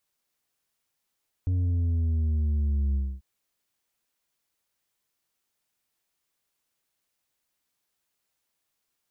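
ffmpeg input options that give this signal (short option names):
-f lavfi -i "aevalsrc='0.0708*clip((1.74-t)/0.26,0,1)*tanh(1.88*sin(2*PI*92*1.74/log(65/92)*(exp(log(65/92)*t/1.74)-1)))/tanh(1.88)':d=1.74:s=44100"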